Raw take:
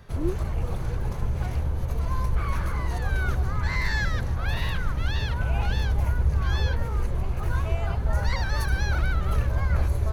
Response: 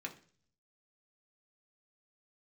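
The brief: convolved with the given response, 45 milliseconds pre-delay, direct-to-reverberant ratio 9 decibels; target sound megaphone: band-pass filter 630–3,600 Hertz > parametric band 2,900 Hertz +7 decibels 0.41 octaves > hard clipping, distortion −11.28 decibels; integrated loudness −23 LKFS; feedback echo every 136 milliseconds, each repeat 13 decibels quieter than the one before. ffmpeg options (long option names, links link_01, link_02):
-filter_complex "[0:a]aecho=1:1:136|272|408:0.224|0.0493|0.0108,asplit=2[link_01][link_02];[1:a]atrim=start_sample=2205,adelay=45[link_03];[link_02][link_03]afir=irnorm=-1:irlink=0,volume=-8.5dB[link_04];[link_01][link_04]amix=inputs=2:normalize=0,highpass=630,lowpass=3600,equalizer=frequency=2900:width_type=o:width=0.41:gain=7,asoftclip=type=hard:threshold=-32dB,volume=13dB"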